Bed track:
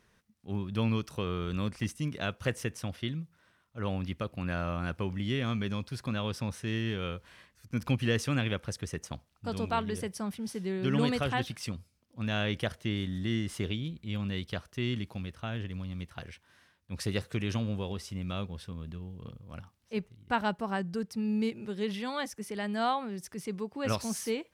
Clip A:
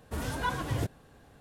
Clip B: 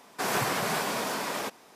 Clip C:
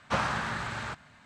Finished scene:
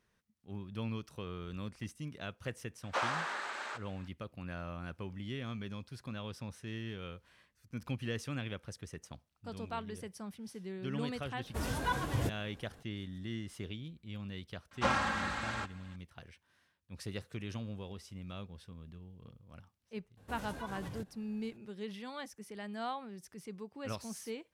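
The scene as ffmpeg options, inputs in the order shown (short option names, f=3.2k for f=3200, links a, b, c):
-filter_complex "[3:a]asplit=2[a][b];[1:a]asplit=2[c][d];[0:a]volume=-9.5dB[e];[a]highpass=f=360:w=0.5412,highpass=f=360:w=1.3066[f];[b]aecho=1:1:3.7:0.78[g];[d]acompressor=threshold=-33dB:ratio=6:attack=3.2:release=140:knee=1:detection=peak[h];[f]atrim=end=1.25,asetpts=PTS-STARTPTS,volume=-4.5dB,afade=t=in:d=0.004:c=hsin,afade=t=out:st=1.246:d=0.004:c=hsin,adelay=2830[i];[c]atrim=end=1.4,asetpts=PTS-STARTPTS,volume=-2dB,afade=t=in:d=0.004:c=hsin,afade=t=out:st=1.396:d=0.004:c=hsin,adelay=11430[j];[g]atrim=end=1.25,asetpts=PTS-STARTPTS,volume=-4dB,afade=t=in:d=0.004:c=hsin,afade=t=out:st=1.246:d=0.004:c=hsin,adelay=14710[k];[h]atrim=end=1.4,asetpts=PTS-STARTPTS,volume=-8dB,afade=t=in:d=0.004:c=hsin,afade=t=out:st=1.396:d=0.004:c=hsin,adelay=20170[l];[e][i][j][k][l]amix=inputs=5:normalize=0"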